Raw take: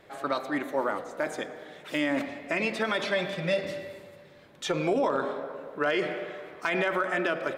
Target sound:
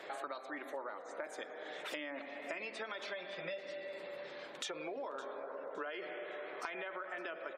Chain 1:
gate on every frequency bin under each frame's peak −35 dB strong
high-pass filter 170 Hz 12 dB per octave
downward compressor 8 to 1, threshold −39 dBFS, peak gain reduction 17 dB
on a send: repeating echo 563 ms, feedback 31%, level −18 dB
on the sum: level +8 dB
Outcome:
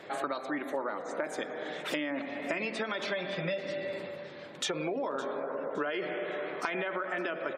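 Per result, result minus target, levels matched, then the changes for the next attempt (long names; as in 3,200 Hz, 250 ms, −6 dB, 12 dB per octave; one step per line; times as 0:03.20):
125 Hz band +10.0 dB; downward compressor: peak gain reduction −8.5 dB
change: high-pass filter 410 Hz 12 dB per octave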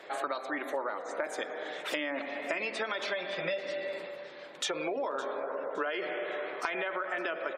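downward compressor: peak gain reduction −9 dB
change: downward compressor 8 to 1, threshold −49.5 dBFS, peak gain reduction 25 dB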